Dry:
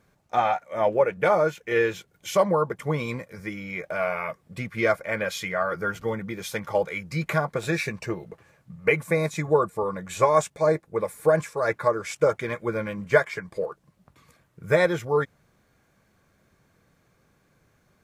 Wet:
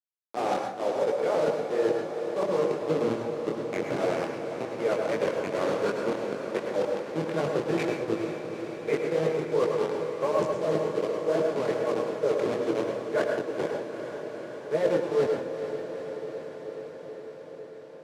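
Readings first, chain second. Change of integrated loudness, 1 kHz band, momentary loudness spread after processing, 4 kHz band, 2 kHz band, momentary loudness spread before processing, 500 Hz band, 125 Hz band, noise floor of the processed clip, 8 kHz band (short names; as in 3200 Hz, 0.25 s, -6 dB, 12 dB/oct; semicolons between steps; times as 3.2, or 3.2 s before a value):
-3.0 dB, -6.0 dB, 11 LU, -3.0 dB, -9.0 dB, 11 LU, -1.0 dB, -7.5 dB, -43 dBFS, -7.5 dB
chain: level-crossing sampler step -20 dBFS; HPF 140 Hz 24 dB/oct; bell 410 Hz +11 dB 1.4 oct; reverse; compressor, threshold -21 dBFS, peak gain reduction 16 dB; reverse; chorus 2.7 Hz, delay 18 ms, depth 7.7 ms; air absorption 63 m; on a send: diffused feedback echo 0.45 s, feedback 76%, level -9 dB; on the sum: plate-style reverb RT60 0.5 s, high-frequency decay 0.75×, pre-delay 90 ms, DRR 3.5 dB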